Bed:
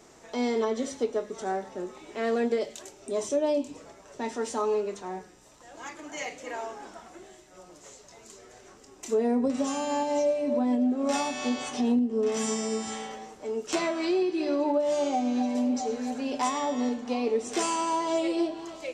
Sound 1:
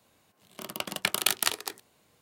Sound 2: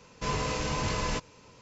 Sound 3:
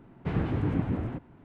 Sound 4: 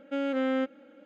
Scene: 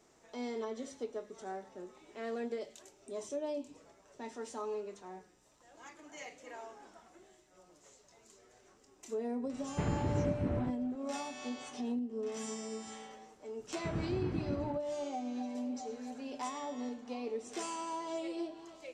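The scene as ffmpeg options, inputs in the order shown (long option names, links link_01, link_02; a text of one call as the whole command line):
ffmpeg -i bed.wav -i cue0.wav -i cue1.wav -i cue2.wav -filter_complex "[3:a]asplit=2[link_01][link_02];[0:a]volume=-12dB[link_03];[link_01]alimiter=limit=-20.5dB:level=0:latency=1:release=223,atrim=end=1.44,asetpts=PTS-STARTPTS,volume=-3dB,afade=type=in:duration=0.004:curve=hsin,afade=type=out:start_time=1.436:duration=0.004:curve=hsin,adelay=9520[link_04];[link_02]atrim=end=1.44,asetpts=PTS-STARTPTS,volume=-9.5dB,afade=type=in:duration=0.004:curve=hsin,afade=type=out:start_time=1.436:duration=0.004:curve=hsin,adelay=13590[link_05];[link_03][link_04][link_05]amix=inputs=3:normalize=0" out.wav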